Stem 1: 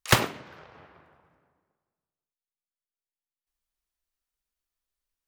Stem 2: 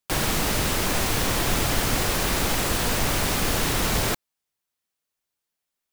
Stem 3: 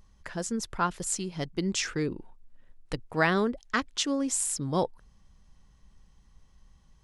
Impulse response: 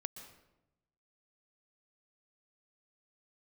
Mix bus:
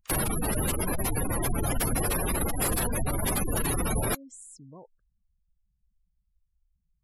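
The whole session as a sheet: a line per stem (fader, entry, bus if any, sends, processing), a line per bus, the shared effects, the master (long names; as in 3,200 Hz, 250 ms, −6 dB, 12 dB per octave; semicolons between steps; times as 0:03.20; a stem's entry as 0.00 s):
−13.0 dB, 0.00 s, bus A, no send, no processing
−2.0 dB, 0.00 s, no bus, no send, parametric band 11,000 Hz +9.5 dB 0.36 octaves
−15.0 dB, 0.00 s, bus A, no send, no processing
bus A: 0.0 dB, high-shelf EQ 3,900 Hz −5.5 dB; downward compressor 6 to 1, threshold −44 dBFS, peak gain reduction 16 dB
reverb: not used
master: gate on every frequency bin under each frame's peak −15 dB strong; high-shelf EQ 8,800 Hz +6.5 dB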